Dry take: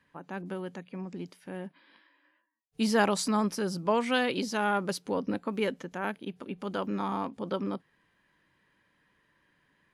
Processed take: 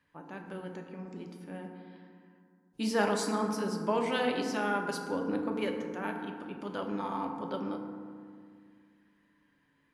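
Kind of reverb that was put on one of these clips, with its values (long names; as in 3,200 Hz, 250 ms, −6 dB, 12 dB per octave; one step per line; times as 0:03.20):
feedback delay network reverb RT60 2.1 s, low-frequency decay 1.4×, high-frequency decay 0.35×, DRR 2 dB
level −5 dB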